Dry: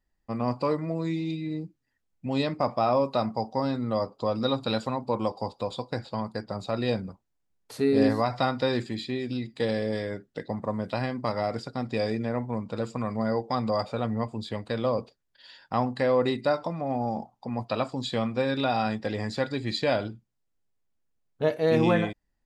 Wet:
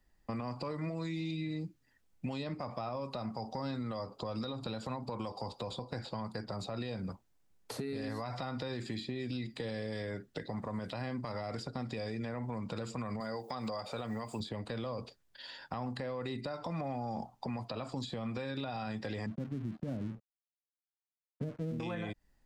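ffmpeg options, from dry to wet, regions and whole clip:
-filter_complex "[0:a]asettb=1/sr,asplit=3[a][b][c];[a]atrim=end=13.204[d];[b]atrim=start=13.2:end=14.4,asetpts=PTS-STARTPTS,afade=t=in:d=0.004:c=qsin,afade=t=out:st=1.196:d=0.004:c=qsin,aemphasis=mode=production:type=bsi,acrossover=split=5000[e][f];[f]acompressor=threshold=-52dB:ratio=4:attack=1:release=60[g];[e][g]amix=inputs=2:normalize=0[h];[c]atrim=start=14.396[i];[d][h]acrossfade=d=0.004:c1=hsin:c2=qsin[j];[j][i]acrossfade=d=0.004:c1=qsin:c2=hsin,asettb=1/sr,asplit=3[k][l][m];[k]atrim=end=19.264[n];[l]atrim=start=19.26:end=21.8,asetpts=PTS-STARTPTS,afade=t=in:d=0.004:c=qsin,afade=t=out:st=2.536:d=0.004:c=qsin,lowpass=f=210:t=q:w=1.6,lowshelf=f=73:g=-7,aeval=exprs='sgn(val(0))*max(abs(val(0))-0.00224,0)':c=same[o];[m]atrim=start=21.796[p];[n][o]acrossfade=d=0.004:c1=hsin:c2=qsin[q];[q][p]acrossfade=d=0.004:c1=qsin:c2=hsin,acompressor=threshold=-28dB:ratio=6,alimiter=level_in=3.5dB:limit=-24dB:level=0:latency=1:release=60,volume=-3.5dB,acrossover=split=140|1200[r][s][t];[r]acompressor=threshold=-51dB:ratio=4[u];[s]acompressor=threshold=-46dB:ratio=4[v];[t]acompressor=threshold=-53dB:ratio=4[w];[u][v][w]amix=inputs=3:normalize=0,volume=6.5dB"

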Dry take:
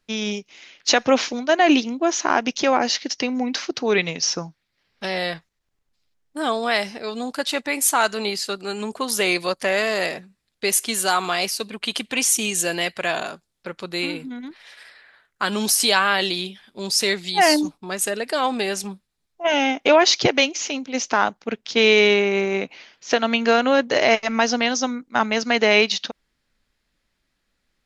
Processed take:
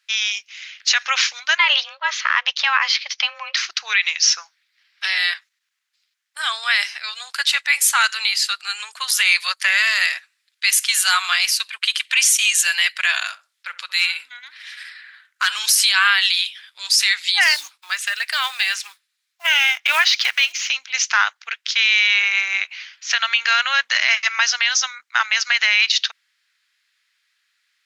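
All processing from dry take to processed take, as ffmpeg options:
-filter_complex "[0:a]asettb=1/sr,asplit=3[a][b][c];[a]atrim=end=1.584[d];[b]atrim=start=1.58:end=3.57,asetpts=PTS-STARTPTS,afade=t=in:d=0.004:c=qsin,afade=t=out:st=1.986:d=0.004:c=qsin,lowpass=f=4.2k:w=0.5412,lowpass=f=4.2k:w=1.3066,afreqshift=280[e];[c]atrim=start=3.566[f];[d][e]acrossfade=d=0.004:c1=hsin:c2=qsin[g];[g][f]acrossfade=d=0.004:c1=qsin:c2=hsin,asettb=1/sr,asplit=3[h][i][j];[h]atrim=end=13.234[k];[i]atrim=start=13.23:end=15.65,asetpts=PTS-STARTPTS,afade=t=in:d=0.004:c=qsin,afade=t=out:st=2.416:d=0.004:c=qsin,volume=15dB,asoftclip=hard,volume=-15dB,asplit=2[l][m];[m]adelay=66,lowpass=f=1.1k:p=1,volume=-13dB,asplit=2[n][o];[o]adelay=66,lowpass=f=1.1k:p=1,volume=0.23,asplit=2[p][q];[q]adelay=66,lowpass=f=1.1k:p=1,volume=0.23[r];[l][n][p][r]amix=inputs=4:normalize=0,atrim=end_sample=106722[s];[j]atrim=start=15.646[t];[k][s]acrossfade=d=0.004:c1=hsin:c2=qsin[u];[u][t]acrossfade=d=0.004:c1=qsin:c2=hsin,asettb=1/sr,asplit=3[v][w][x];[v]atrim=end=17.444[y];[w]atrim=start=17.44:end=20.68,asetpts=PTS-STARTPTS,afade=t=in:d=0.004:c=qsin,afade=t=out:st=3.236:d=0.004:c=qsin,acrossover=split=4600[z][aa];[aa]acompressor=threshold=-37dB:ratio=4:attack=1:release=60[ab];[z][ab]amix=inputs=2:normalize=0,acrusher=bits=6:mode=log:mix=0:aa=0.000001[ac];[x]atrim=start=20.676[ad];[y][ac]acrossfade=d=0.004:c1=hsin:c2=qsin[ae];[ae][ad]acrossfade=d=0.004:c1=qsin:c2=hsin,highpass=f=1.5k:w=0.5412,highpass=f=1.5k:w=1.3066,highshelf=f=6.3k:g=-6.5,alimiter=level_in=14.5dB:limit=-1dB:release=50:level=0:latency=1,volume=-4dB"

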